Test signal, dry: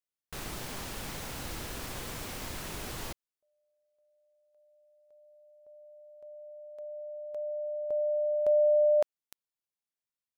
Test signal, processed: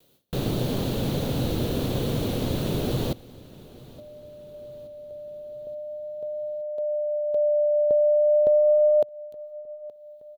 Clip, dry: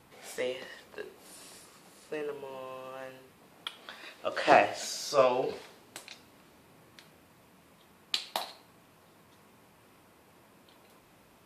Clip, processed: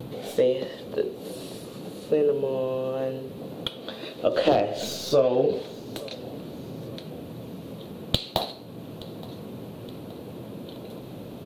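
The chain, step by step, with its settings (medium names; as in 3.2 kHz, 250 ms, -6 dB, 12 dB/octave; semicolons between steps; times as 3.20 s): tracing distortion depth 0.052 ms; peaking EQ 5.1 kHz -9.5 dB 0.35 oct; in parallel at -0.5 dB: upward compressor, threshold -40 dBFS; on the sum: wavefolder -5 dBFS; gate with hold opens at -49 dBFS, hold 143 ms, range -18 dB; ten-band graphic EQ 125 Hz +11 dB, 250 Hz +7 dB, 500 Hz +9 dB, 1 kHz -5 dB, 2 kHz -10 dB, 4 kHz +8 dB, 8 kHz -10 dB; compression 6:1, threshold -20 dBFS; vibrato 0.36 Hz 12 cents; on a send: feedback delay 872 ms, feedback 50%, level -21 dB; on the sum: trim +2.5 dB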